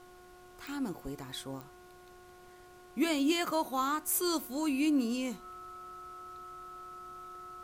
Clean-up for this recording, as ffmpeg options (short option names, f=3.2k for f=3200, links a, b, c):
-af "adeclick=t=4,bandreject=f=361:t=h:w=4,bandreject=f=722:t=h:w=4,bandreject=f=1.083k:t=h:w=4,bandreject=f=1.444k:t=h:w=4,bandreject=f=1.3k:w=30,agate=range=-21dB:threshold=-47dB"